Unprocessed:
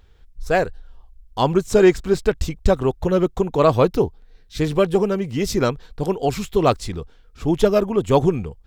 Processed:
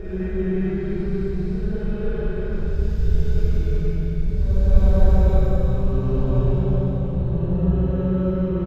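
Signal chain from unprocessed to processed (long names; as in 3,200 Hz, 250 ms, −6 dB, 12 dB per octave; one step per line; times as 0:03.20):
drawn EQ curve 120 Hz 0 dB, 310 Hz −16 dB, 8,100 Hz −20 dB, 13,000 Hz +2 dB
single-tap delay 191 ms −6.5 dB
low-pass that shuts in the quiet parts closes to 2,100 Hz, open at −10 dBFS
extreme stretch with random phases 7.1×, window 0.25 s, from 0:02.00
four-comb reverb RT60 3.3 s, combs from 33 ms, DRR −9 dB
level −3 dB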